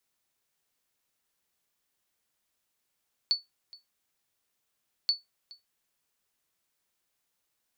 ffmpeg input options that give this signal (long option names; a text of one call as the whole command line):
ffmpeg -f lavfi -i "aevalsrc='0.141*(sin(2*PI*4460*mod(t,1.78))*exp(-6.91*mod(t,1.78)/0.17)+0.0708*sin(2*PI*4460*max(mod(t,1.78)-0.42,0))*exp(-6.91*max(mod(t,1.78)-0.42,0)/0.17))':duration=3.56:sample_rate=44100" out.wav